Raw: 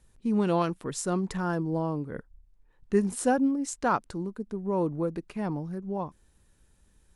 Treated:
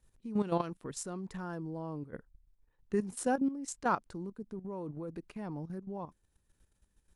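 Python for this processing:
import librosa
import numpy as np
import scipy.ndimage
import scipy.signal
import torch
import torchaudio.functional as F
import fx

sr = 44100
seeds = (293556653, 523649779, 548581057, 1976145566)

y = fx.level_steps(x, sr, step_db=12)
y = F.gain(torch.from_numpy(y), -3.5).numpy()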